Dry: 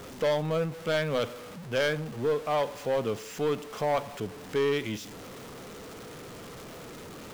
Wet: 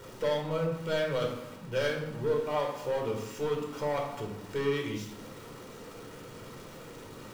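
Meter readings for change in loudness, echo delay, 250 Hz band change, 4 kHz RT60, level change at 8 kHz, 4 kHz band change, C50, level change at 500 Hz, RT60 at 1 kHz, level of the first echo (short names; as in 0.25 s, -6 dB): -2.5 dB, none, -2.0 dB, 0.55 s, -4.0 dB, -3.5 dB, 5.0 dB, -2.5 dB, 0.95 s, none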